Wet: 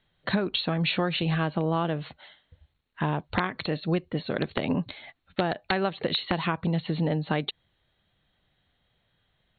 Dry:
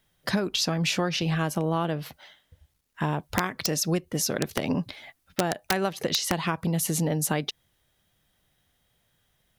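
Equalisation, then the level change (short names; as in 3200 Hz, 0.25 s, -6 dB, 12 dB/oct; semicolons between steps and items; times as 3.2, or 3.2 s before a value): brick-wall FIR low-pass 4400 Hz; 0.0 dB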